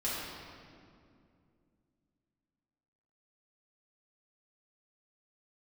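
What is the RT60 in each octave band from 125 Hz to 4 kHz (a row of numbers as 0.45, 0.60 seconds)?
3.3, 3.4, 2.7, 2.1, 1.8, 1.5 seconds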